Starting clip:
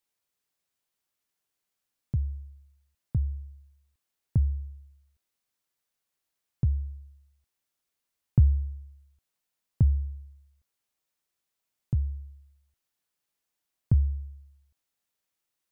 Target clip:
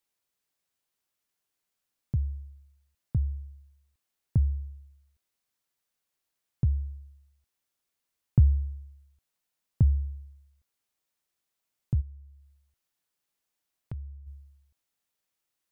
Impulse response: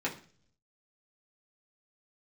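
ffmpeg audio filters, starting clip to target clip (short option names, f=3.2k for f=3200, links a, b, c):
-filter_complex "[0:a]asplit=3[a][b][c];[a]afade=t=out:st=12:d=0.02[d];[b]acompressor=threshold=-49dB:ratio=2,afade=t=in:st=12:d=0.02,afade=t=out:st=14.26:d=0.02[e];[c]afade=t=in:st=14.26:d=0.02[f];[d][e][f]amix=inputs=3:normalize=0"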